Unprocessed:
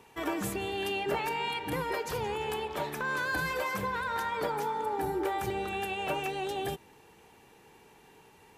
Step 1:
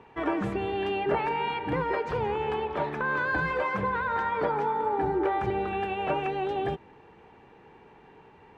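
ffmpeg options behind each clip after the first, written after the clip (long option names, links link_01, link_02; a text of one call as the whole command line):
ffmpeg -i in.wav -af "lowpass=2000,volume=5dB" out.wav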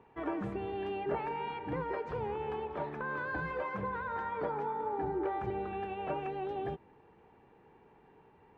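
ffmpeg -i in.wav -af "highshelf=frequency=2100:gain=-8.5,volume=-7dB" out.wav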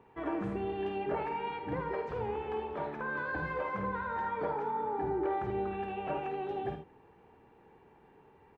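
ffmpeg -i in.wav -af "aecho=1:1:51|77:0.398|0.335" out.wav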